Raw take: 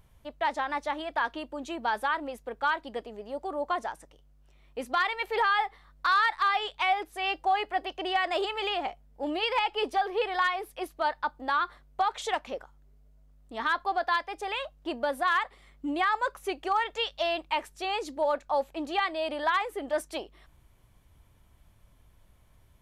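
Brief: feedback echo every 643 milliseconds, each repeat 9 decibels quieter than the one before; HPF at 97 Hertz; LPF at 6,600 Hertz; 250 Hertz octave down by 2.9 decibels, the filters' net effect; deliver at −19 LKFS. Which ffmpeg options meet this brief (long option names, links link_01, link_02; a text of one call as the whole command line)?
ffmpeg -i in.wav -af "highpass=97,lowpass=6600,equalizer=frequency=250:width_type=o:gain=-4,aecho=1:1:643|1286|1929|2572:0.355|0.124|0.0435|0.0152,volume=10.5dB" out.wav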